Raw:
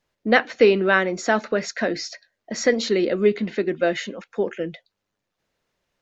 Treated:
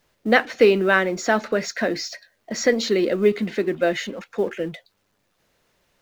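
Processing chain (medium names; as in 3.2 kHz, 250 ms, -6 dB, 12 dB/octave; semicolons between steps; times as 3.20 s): companding laws mixed up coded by mu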